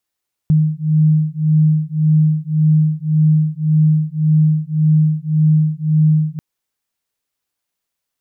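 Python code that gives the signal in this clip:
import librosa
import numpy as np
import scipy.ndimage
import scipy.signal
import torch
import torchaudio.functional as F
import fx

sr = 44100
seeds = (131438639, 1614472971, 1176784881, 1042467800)

y = fx.two_tone_beats(sr, length_s=5.89, hz=154.0, beat_hz=1.8, level_db=-14.0)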